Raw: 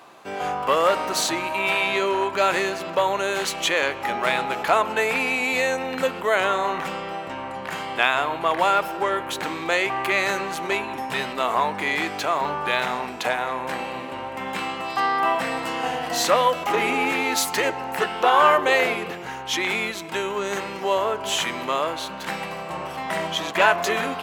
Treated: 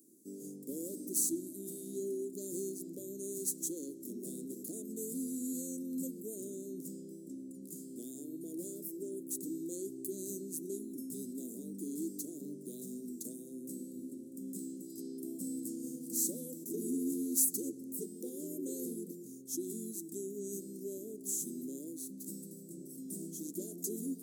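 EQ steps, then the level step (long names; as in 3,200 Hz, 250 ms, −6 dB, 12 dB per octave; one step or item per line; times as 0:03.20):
four-pole ladder high-pass 270 Hz, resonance 40%
inverse Chebyshev band-stop filter 790–2,700 Hz, stop band 70 dB
+9.5 dB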